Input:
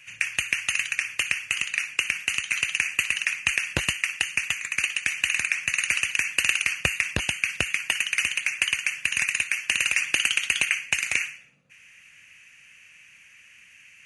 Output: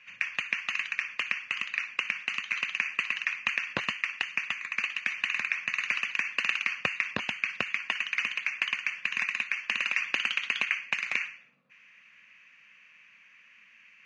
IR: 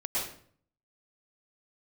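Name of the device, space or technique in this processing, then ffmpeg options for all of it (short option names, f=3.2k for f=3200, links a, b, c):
kitchen radio: -af "highpass=210,equalizer=f=220:t=q:w=4:g=6,equalizer=f=330:t=q:w=4:g=-4,equalizer=f=1.1k:t=q:w=4:g=8,equalizer=f=2.9k:t=q:w=4:g=-4,lowpass=f=4.4k:w=0.5412,lowpass=f=4.4k:w=1.3066,volume=-3.5dB"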